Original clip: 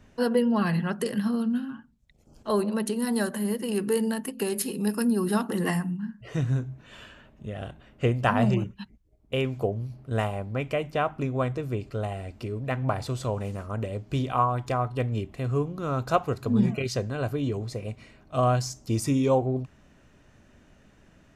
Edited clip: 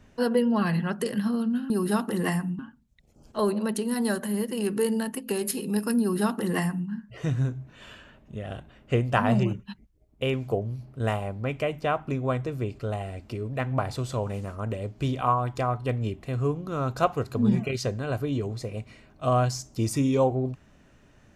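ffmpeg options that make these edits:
-filter_complex "[0:a]asplit=3[a][b][c];[a]atrim=end=1.702[d];[b]atrim=start=5.108:end=6.002[e];[c]atrim=start=1.698[f];[d][e]acrossfade=d=0.004:c1=hsin:c2=hsin[g];[g][f]acrossfade=d=0.004:c1=hsin:c2=hsin"

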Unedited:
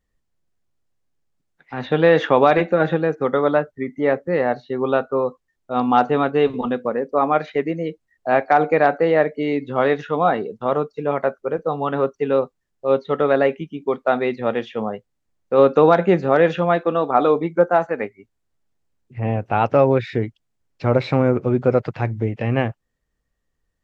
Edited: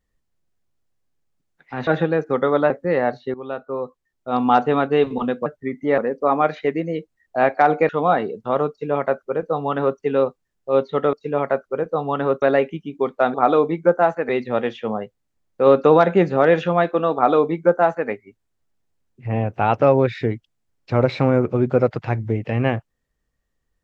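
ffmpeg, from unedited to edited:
-filter_complex "[0:a]asplit=11[a][b][c][d][e][f][g][h][i][j][k];[a]atrim=end=1.872[l];[b]atrim=start=2.778:end=3.612[m];[c]atrim=start=4.128:end=4.77,asetpts=PTS-STARTPTS,afade=t=out:st=0.638:d=0.004:c=hsin:silence=0.177828[n];[d]atrim=start=4.77:end=6.892,asetpts=PTS-STARTPTS,afade=t=in:d=1.08:silence=0.177828[o];[e]atrim=start=3.608:end=4.132[p];[f]atrim=start=6.888:end=8.802[q];[g]atrim=start=10.048:end=13.292[r];[h]atrim=start=10.858:end=12.152[s];[i]atrim=start=13.288:end=14.212[t];[j]atrim=start=17.058:end=18.012[u];[k]atrim=start=14.208[v];[l][m]acrossfade=d=0.004:c1=hsin:c2=hsin[w];[n][o]concat=n=2:v=0:a=1[x];[w][x]acrossfade=d=0.004:c1=hsin:c2=hsin[y];[y][p]acrossfade=d=0.004:c1=hsin:c2=hsin[z];[z][q]acrossfade=d=0.004:c1=hsin:c2=hsin[aa];[aa][r]acrossfade=d=0.004:c1=hsin:c2=hsin[ab];[ab][s]acrossfade=d=0.004:c1=hsin:c2=hsin[ac];[ac][t]acrossfade=d=0.004:c1=hsin:c2=hsin[ad];[ad][u]acrossfade=d=0.004:c1=hsin:c2=hsin[ae];[ae][v]acrossfade=d=0.004:c1=hsin:c2=hsin"

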